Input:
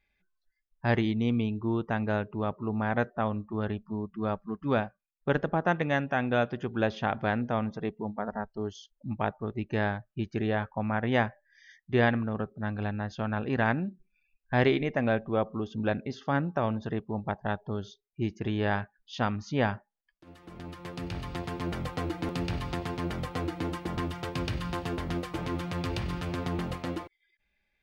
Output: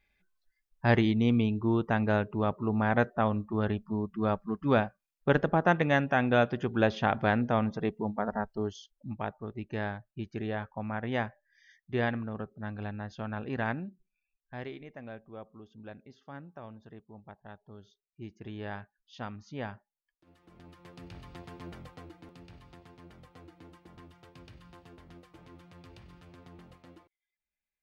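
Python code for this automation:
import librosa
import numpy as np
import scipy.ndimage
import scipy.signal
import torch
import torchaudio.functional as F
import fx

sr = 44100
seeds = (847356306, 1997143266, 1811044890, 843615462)

y = fx.gain(x, sr, db=fx.line((8.56, 2.0), (9.23, -5.5), (13.71, -5.5), (14.69, -17.5), (17.57, -17.5), (18.58, -11.0), (21.67, -11.0), (22.35, -20.0)))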